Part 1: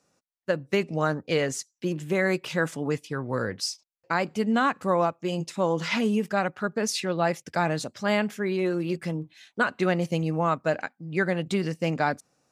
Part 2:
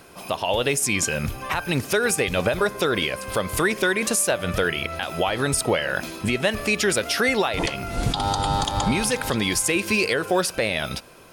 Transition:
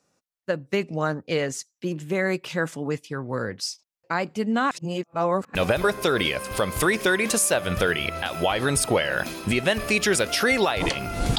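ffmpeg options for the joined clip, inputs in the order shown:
-filter_complex "[0:a]apad=whole_dur=11.38,atrim=end=11.38,asplit=2[s0][s1];[s0]atrim=end=4.712[s2];[s1]atrim=start=4.708:end=5.552,asetpts=PTS-STARTPTS,areverse[s3];[1:a]atrim=start=2.318:end=8.15[s4];[s2][s3]acrossfade=d=0.004:c1=hsin:c2=hsin[s5];[s5][s4]acrossfade=d=0.004:c1=hsin:c2=hsin"

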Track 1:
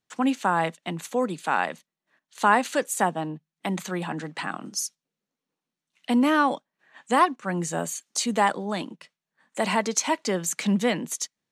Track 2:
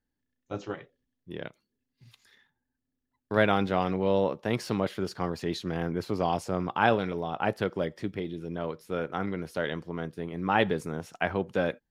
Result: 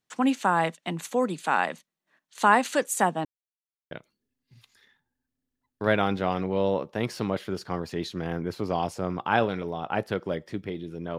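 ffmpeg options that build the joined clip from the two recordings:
-filter_complex "[0:a]apad=whole_dur=11.18,atrim=end=11.18,asplit=2[s0][s1];[s0]atrim=end=3.25,asetpts=PTS-STARTPTS,afade=t=out:st=3.246:d=0.004:c=hsin[s2];[s1]atrim=start=3.25:end=3.91,asetpts=PTS-STARTPTS,volume=0[s3];[1:a]atrim=start=1.41:end=8.68,asetpts=PTS-STARTPTS,afade=t=in:d=0.004:c=hsin[s4];[s2][s3][s4]concat=n=3:v=0:a=1"

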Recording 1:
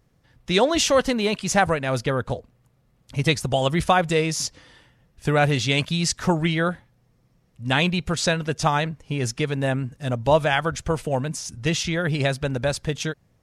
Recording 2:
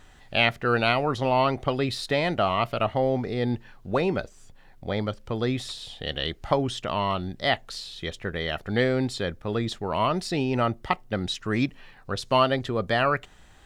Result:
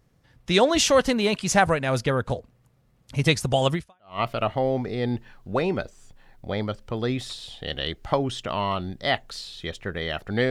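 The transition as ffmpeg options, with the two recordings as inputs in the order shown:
-filter_complex "[0:a]apad=whole_dur=10.5,atrim=end=10.5,atrim=end=4.2,asetpts=PTS-STARTPTS[s0];[1:a]atrim=start=2.13:end=8.89,asetpts=PTS-STARTPTS[s1];[s0][s1]acrossfade=d=0.46:c1=exp:c2=exp"

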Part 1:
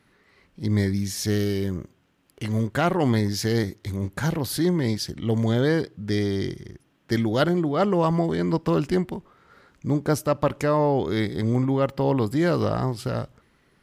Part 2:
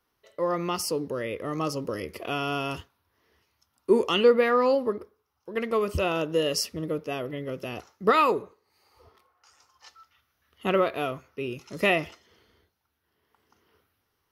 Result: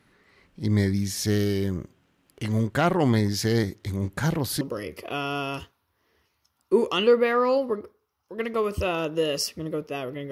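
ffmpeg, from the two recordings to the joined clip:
-filter_complex "[0:a]apad=whole_dur=10.31,atrim=end=10.31,atrim=end=4.612[s0];[1:a]atrim=start=1.778:end=7.48[s1];[s0][s1]acrossfade=d=0.004:c1=hsin:c2=hsin"

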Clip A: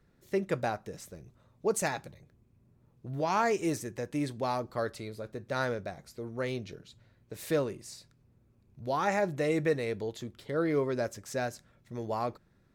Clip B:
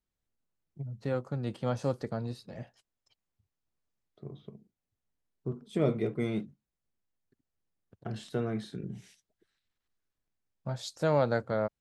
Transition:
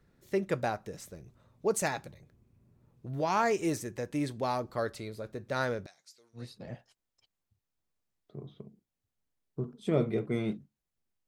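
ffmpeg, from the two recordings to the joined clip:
-filter_complex "[0:a]asettb=1/sr,asplit=3[s0][s1][s2];[s0]atrim=end=5.864[s3];[s1]atrim=start=5.86:end=6.49,asetpts=PTS-STARTPTS,afade=t=in:d=0.004:c=qsin,afade=t=out:st=0.626:d=0.004:c=qsin,bandpass=f=5600:t=q:w=1.3:csg=0[s4];[s2]atrim=start=6.486[s5];[s3][s4]acrossfade=d=0.004:c1=hsin:c2=qsin[s6];[s6][s5]acrossfade=d=0.004:c1=qsin:c2=hsin,apad=whole_dur=11.27,atrim=end=11.27,atrim=end=6.49,asetpts=PTS-STARTPTS[s7];[1:a]atrim=start=2.21:end=7.15,asetpts=PTS-STARTPTS[s8];[s7][s8]acrossfade=d=0.16:c1=tri:c2=tri"

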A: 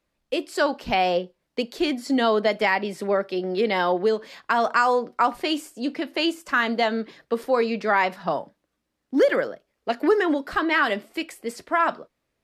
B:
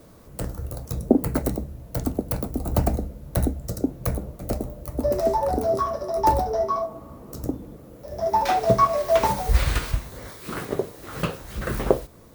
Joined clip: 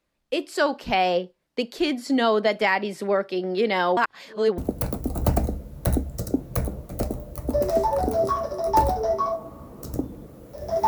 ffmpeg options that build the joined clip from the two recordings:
-filter_complex "[0:a]apad=whole_dur=10.87,atrim=end=10.87,asplit=2[s0][s1];[s0]atrim=end=3.972[s2];[s1]atrim=start=3.968:end=4.582,asetpts=PTS-STARTPTS,areverse[s3];[1:a]atrim=start=2.078:end=8.37[s4];[s2][s3]acrossfade=d=0.004:c1=hsin:c2=hsin[s5];[s5][s4]acrossfade=d=0.004:c1=hsin:c2=hsin"

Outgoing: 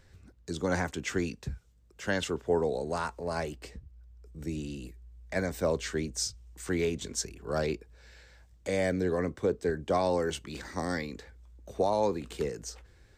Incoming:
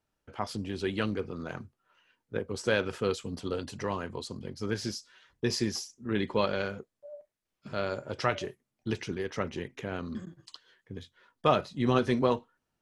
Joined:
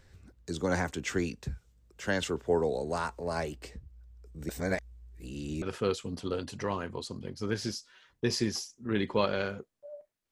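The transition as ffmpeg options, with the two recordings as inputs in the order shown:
-filter_complex "[0:a]apad=whole_dur=10.31,atrim=end=10.31,asplit=2[s0][s1];[s0]atrim=end=4.492[s2];[s1]atrim=start=4.488:end=5.622,asetpts=PTS-STARTPTS,areverse[s3];[1:a]atrim=start=2.818:end=7.51[s4];[s2][s3]acrossfade=d=0.004:c1=hsin:c2=hsin[s5];[s5][s4]acrossfade=d=0.004:c1=hsin:c2=hsin"

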